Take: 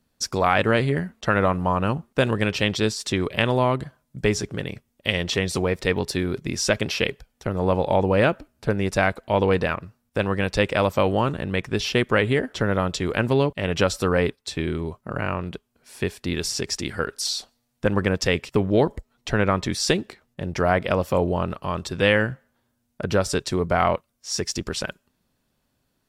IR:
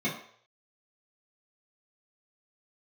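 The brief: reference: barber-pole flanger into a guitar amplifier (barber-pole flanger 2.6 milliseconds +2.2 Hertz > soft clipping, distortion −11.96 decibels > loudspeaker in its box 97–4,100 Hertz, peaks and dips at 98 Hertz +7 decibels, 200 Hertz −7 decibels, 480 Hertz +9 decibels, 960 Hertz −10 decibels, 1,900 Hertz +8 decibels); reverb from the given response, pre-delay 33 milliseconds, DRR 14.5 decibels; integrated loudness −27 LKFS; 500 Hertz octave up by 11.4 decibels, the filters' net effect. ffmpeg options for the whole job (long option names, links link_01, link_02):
-filter_complex "[0:a]equalizer=frequency=500:width_type=o:gain=7,asplit=2[link_01][link_02];[1:a]atrim=start_sample=2205,adelay=33[link_03];[link_02][link_03]afir=irnorm=-1:irlink=0,volume=-23.5dB[link_04];[link_01][link_04]amix=inputs=2:normalize=0,asplit=2[link_05][link_06];[link_06]adelay=2.6,afreqshift=2.2[link_07];[link_05][link_07]amix=inputs=2:normalize=1,asoftclip=threshold=-16.5dB,highpass=97,equalizer=frequency=98:width_type=q:width=4:gain=7,equalizer=frequency=200:width_type=q:width=4:gain=-7,equalizer=frequency=480:width_type=q:width=4:gain=9,equalizer=frequency=960:width_type=q:width=4:gain=-10,equalizer=frequency=1900:width_type=q:width=4:gain=8,lowpass=frequency=4100:width=0.5412,lowpass=frequency=4100:width=1.3066,volume=-5dB"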